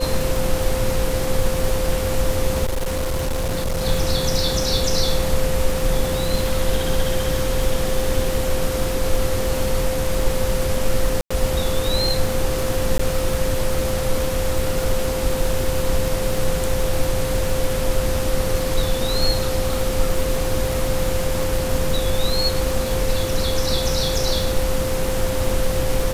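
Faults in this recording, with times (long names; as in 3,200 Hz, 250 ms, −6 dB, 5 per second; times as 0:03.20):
surface crackle 110 per second −24 dBFS
whistle 520 Hz −24 dBFS
0:02.65–0:03.86: clipping −18.5 dBFS
0:11.21–0:11.30: drop-out 95 ms
0:12.98–0:12.99: drop-out 14 ms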